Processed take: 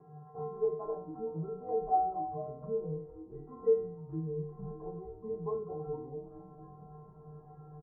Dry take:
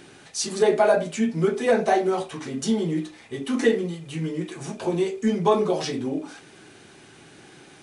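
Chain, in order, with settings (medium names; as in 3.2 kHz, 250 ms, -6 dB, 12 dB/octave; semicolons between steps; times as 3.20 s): careless resampling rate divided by 8×, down none, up hold; in parallel at +0.5 dB: upward compressor, threshold -19 dBFS; on the sum: steep low-pass 1.1 kHz 48 dB/octave; gate with hold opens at -28 dBFS; feedback comb 150 Hz, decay 0.76 s, harmonics odd, mix 100%; frequency-shifting echo 459 ms, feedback 43%, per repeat -130 Hz, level -15.5 dB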